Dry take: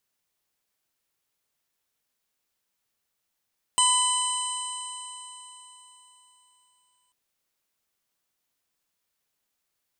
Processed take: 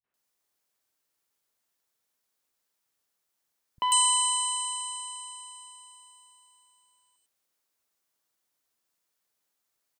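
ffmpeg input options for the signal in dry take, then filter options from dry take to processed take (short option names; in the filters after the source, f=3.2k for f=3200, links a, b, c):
-f lavfi -i "aevalsrc='0.0794*pow(10,-3*t/3.81)*sin(2*PI*999.55*t)+0.00944*pow(10,-3*t/3.81)*sin(2*PI*2002.39*t)+0.0668*pow(10,-3*t/3.81)*sin(2*PI*3011.8*t)+0.0188*pow(10,-3*t/3.81)*sin(2*PI*4031.01*t)+0.01*pow(10,-3*t/3.81)*sin(2*PI*5063.22*t)+0.01*pow(10,-3*t/3.81)*sin(2*PI*6111.53*t)+0.0224*pow(10,-3*t/3.81)*sin(2*PI*7178.99*t)+0.1*pow(10,-3*t/3.81)*sin(2*PI*8268.53*t)+0.0237*pow(10,-3*t/3.81)*sin(2*PI*9383*t)':d=3.34:s=44100"
-filter_complex "[0:a]lowshelf=f=80:g=-8.5,acrossover=split=150|2700[a][b][c];[b]adelay=40[d];[c]adelay=140[e];[a][d][e]amix=inputs=3:normalize=0"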